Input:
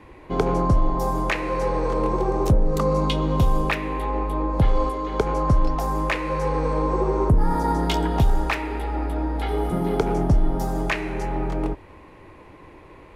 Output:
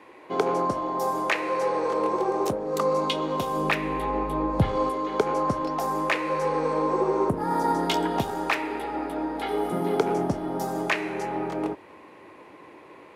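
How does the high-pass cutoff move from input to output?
3.45 s 340 Hz
3.85 s 92 Hz
4.58 s 92 Hz
5.24 s 240 Hz

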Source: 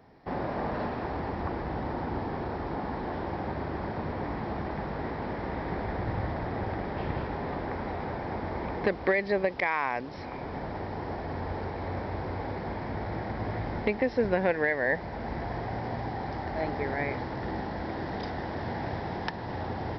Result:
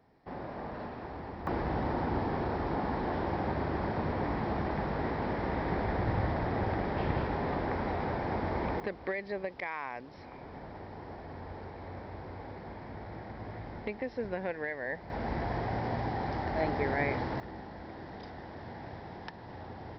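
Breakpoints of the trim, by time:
-8.5 dB
from 1.47 s +1 dB
from 8.80 s -9.5 dB
from 15.10 s +0.5 dB
from 17.40 s -10.5 dB

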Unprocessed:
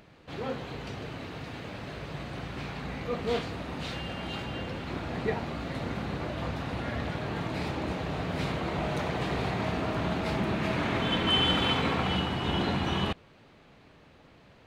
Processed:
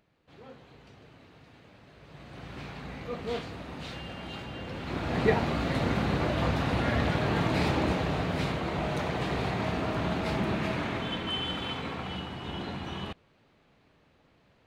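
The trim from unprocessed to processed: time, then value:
1.93 s -15 dB
2.53 s -4 dB
4.59 s -4 dB
5.23 s +6 dB
7.77 s +6 dB
8.59 s 0 dB
10.55 s 0 dB
11.39 s -8 dB

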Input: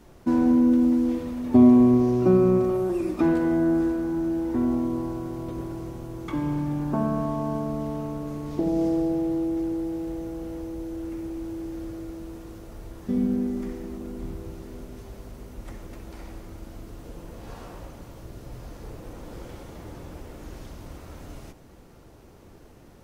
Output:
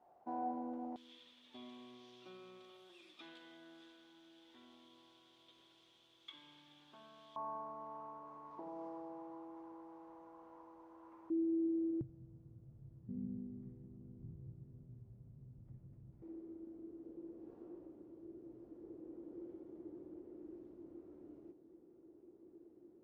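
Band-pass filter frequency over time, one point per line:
band-pass filter, Q 8.4
750 Hz
from 0.96 s 3.4 kHz
from 7.36 s 1 kHz
from 11.30 s 320 Hz
from 12.01 s 130 Hz
from 16.22 s 340 Hz

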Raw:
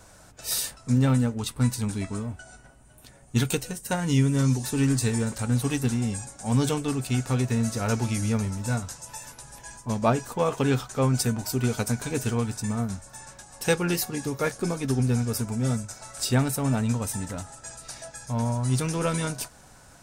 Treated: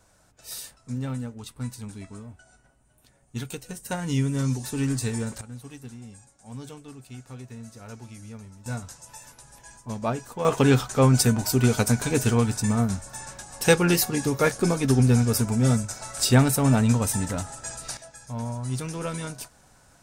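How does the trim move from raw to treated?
-9.5 dB
from 3.69 s -3 dB
from 5.41 s -16 dB
from 8.66 s -5 dB
from 10.45 s +5 dB
from 17.97 s -5 dB

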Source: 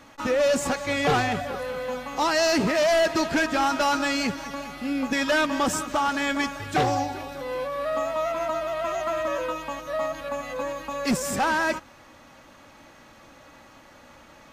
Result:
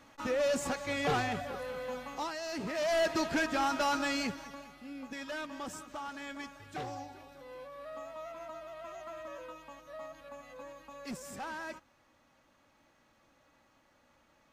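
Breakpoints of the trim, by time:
2.10 s -8.5 dB
2.40 s -19 dB
3.02 s -7.5 dB
4.18 s -7.5 dB
4.84 s -17.5 dB

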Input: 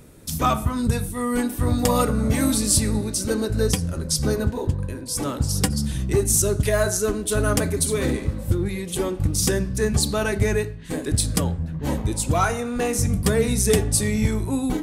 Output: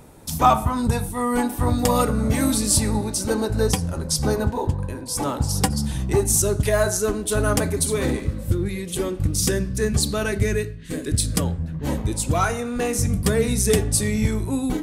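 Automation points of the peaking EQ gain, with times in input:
peaking EQ 850 Hz 0.64 oct
+12 dB
from 1.70 s +2.5 dB
from 2.71 s +10 dB
from 6.41 s +4 dB
from 8.20 s -5 dB
from 10.41 s -12.5 dB
from 11.33 s -1.5 dB

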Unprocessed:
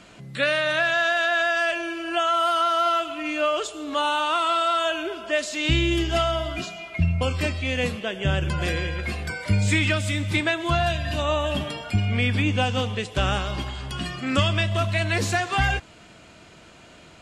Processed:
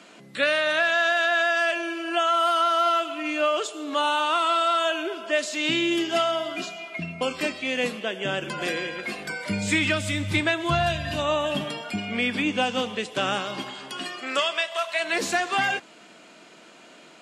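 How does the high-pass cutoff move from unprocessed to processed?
high-pass 24 dB/octave
9.08 s 210 Hz
10.43 s 89 Hz
11.00 s 89 Hz
12.01 s 190 Hz
13.68 s 190 Hz
14.84 s 650 Hz
15.27 s 210 Hz

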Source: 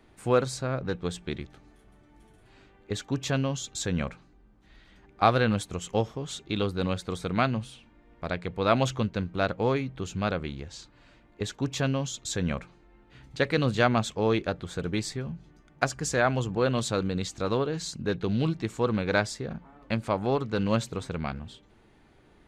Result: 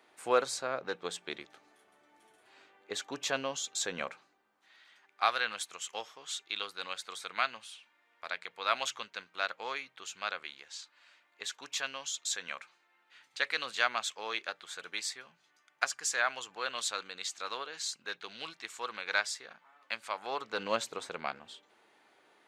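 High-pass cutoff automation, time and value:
4.04 s 570 Hz
5.23 s 1.3 kHz
20.15 s 1.3 kHz
20.64 s 590 Hz

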